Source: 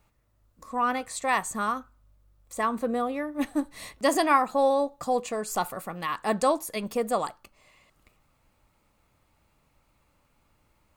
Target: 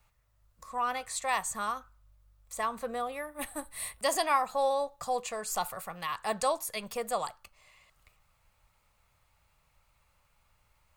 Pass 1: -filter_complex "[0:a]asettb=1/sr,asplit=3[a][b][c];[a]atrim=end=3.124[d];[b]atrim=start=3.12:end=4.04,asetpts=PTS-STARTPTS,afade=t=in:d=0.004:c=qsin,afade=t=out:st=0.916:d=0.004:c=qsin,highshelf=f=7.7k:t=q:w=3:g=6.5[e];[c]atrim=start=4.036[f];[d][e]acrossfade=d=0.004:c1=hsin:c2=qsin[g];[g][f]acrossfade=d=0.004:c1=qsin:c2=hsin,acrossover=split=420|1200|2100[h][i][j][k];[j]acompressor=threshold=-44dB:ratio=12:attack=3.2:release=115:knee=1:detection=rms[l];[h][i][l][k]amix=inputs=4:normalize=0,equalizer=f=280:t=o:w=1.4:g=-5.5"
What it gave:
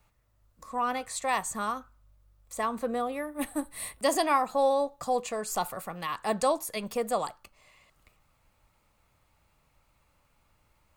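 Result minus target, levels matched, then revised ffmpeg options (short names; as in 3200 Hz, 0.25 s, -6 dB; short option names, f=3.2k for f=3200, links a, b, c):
250 Hz band +7.0 dB
-filter_complex "[0:a]asettb=1/sr,asplit=3[a][b][c];[a]atrim=end=3.124[d];[b]atrim=start=3.12:end=4.04,asetpts=PTS-STARTPTS,afade=t=in:d=0.004:c=qsin,afade=t=out:st=0.916:d=0.004:c=qsin,highshelf=f=7.7k:t=q:w=3:g=6.5[e];[c]atrim=start=4.036[f];[d][e]acrossfade=d=0.004:c1=hsin:c2=qsin[g];[g][f]acrossfade=d=0.004:c1=qsin:c2=hsin,acrossover=split=420|1200|2100[h][i][j][k];[j]acompressor=threshold=-44dB:ratio=12:attack=3.2:release=115:knee=1:detection=rms[l];[h][i][l][k]amix=inputs=4:normalize=0,equalizer=f=280:t=o:w=1.4:g=-16.5"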